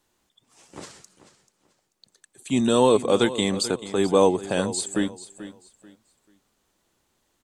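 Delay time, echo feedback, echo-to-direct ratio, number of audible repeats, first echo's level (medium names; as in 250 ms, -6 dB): 437 ms, 26%, -14.0 dB, 2, -14.5 dB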